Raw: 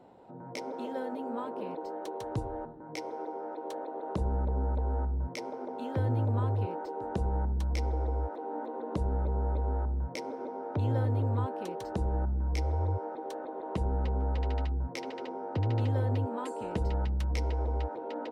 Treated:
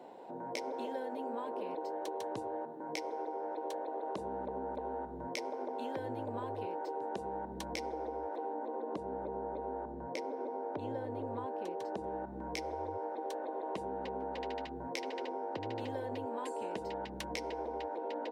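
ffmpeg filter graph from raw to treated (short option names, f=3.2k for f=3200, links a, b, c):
-filter_complex "[0:a]asettb=1/sr,asplit=3[a][b][c];[a]atrim=end=8.534[d];[b]atrim=start=8.53:end=12.04,asetpts=PTS-STARTPTS,afade=t=in:d=0.004:c=qsin,afade=t=out:st=3.506:d=0.004:c=qsin,lowpass=f=3.7k:p=1,equalizer=f=2.8k:w=0.44:g=-3.5[e];[c]atrim=start=12.036[f];[d][e]acrossfade=d=0.004:c1=hsin:c2=qsin[g];[g][f]acrossfade=d=0.004:c1=qsin:c2=hsin,highpass=320,bandreject=f=1.3k:w=5.8,acompressor=threshold=-42dB:ratio=6,volume=6dB"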